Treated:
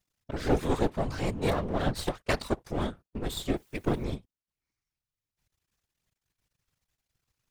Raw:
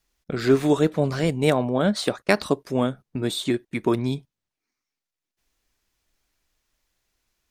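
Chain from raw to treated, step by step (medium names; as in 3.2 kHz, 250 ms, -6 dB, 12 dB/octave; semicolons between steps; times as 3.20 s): 3.56–4.04 s: word length cut 10-bit, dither triangular; half-wave rectifier; whisper effect; trim -3.5 dB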